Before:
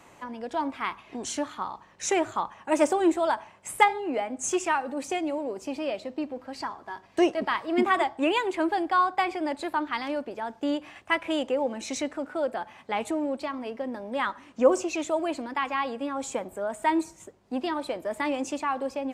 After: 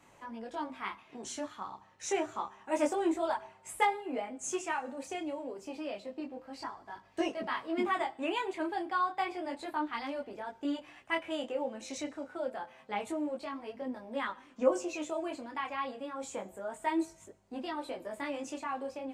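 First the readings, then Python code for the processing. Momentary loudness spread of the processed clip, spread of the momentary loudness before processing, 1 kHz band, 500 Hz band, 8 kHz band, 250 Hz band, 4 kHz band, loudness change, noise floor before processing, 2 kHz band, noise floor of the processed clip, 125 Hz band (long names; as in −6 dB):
11 LU, 11 LU, −8.0 dB, −7.5 dB, −8.0 dB, −8.0 dB, −8.0 dB, −8.0 dB, −55 dBFS, −8.0 dB, −61 dBFS, can't be measured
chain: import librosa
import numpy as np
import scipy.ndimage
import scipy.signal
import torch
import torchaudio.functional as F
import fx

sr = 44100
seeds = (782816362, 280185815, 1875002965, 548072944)

y = fx.comb_fb(x, sr, f0_hz=130.0, decay_s=1.1, harmonics='all', damping=0.0, mix_pct=40)
y = fx.detune_double(y, sr, cents=10)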